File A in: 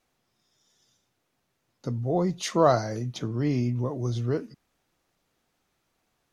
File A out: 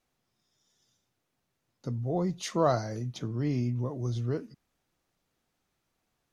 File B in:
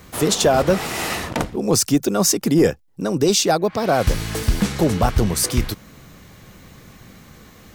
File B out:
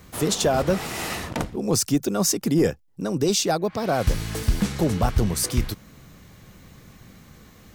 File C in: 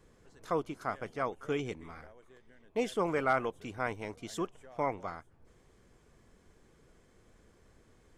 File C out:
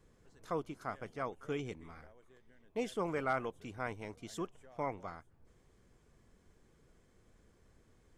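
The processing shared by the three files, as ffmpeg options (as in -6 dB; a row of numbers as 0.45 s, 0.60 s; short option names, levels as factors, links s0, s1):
-af "bass=f=250:g=3,treble=f=4000:g=1,volume=0.531"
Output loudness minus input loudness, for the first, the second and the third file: -4.5 LU, -4.5 LU, -5.0 LU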